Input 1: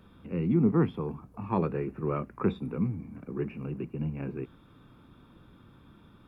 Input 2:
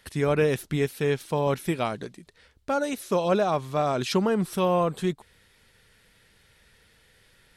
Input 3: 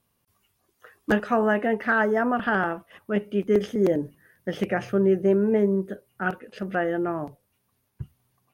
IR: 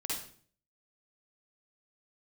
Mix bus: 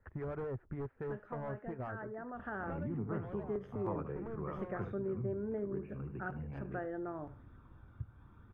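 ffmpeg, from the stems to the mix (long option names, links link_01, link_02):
-filter_complex "[0:a]tiltshelf=frequency=800:gain=-3.5,aphaser=in_gain=1:out_gain=1:delay=1.4:decay=0.3:speed=0.62:type=sinusoidal,adelay=2350,volume=3dB,asplit=2[link_01][link_02];[link_02]volume=-9dB[link_03];[1:a]lowpass=frequency=1900:width=0.5412,lowpass=frequency=1900:width=1.3066,acrossover=split=490[link_04][link_05];[link_04]aeval=exprs='val(0)*(1-0.7/2+0.7/2*cos(2*PI*7.2*n/s))':channel_layout=same[link_06];[link_05]aeval=exprs='val(0)*(1-0.7/2-0.7/2*cos(2*PI*7.2*n/s))':channel_layout=same[link_07];[link_06][link_07]amix=inputs=2:normalize=0,asoftclip=type=hard:threshold=-26.5dB,volume=3dB[link_08];[2:a]volume=-1dB,afade=type=in:start_time=2.32:duration=0.42:silence=0.281838,asplit=3[link_09][link_10][link_11];[link_10]volume=-19dB[link_12];[link_11]apad=whole_len=333396[link_13];[link_08][link_13]sidechaincompress=threshold=-26dB:ratio=8:attack=10:release=1330[link_14];[link_03][link_12]amix=inputs=2:normalize=0,aecho=0:1:74:1[link_15];[link_01][link_14][link_09][link_15]amix=inputs=4:normalize=0,firequalizer=gain_entry='entry(110,0);entry(160,-10);entry(370,-8);entry(1500,-9);entry(2600,-21);entry(4200,-28)':delay=0.05:min_phase=1,acompressor=threshold=-41dB:ratio=2"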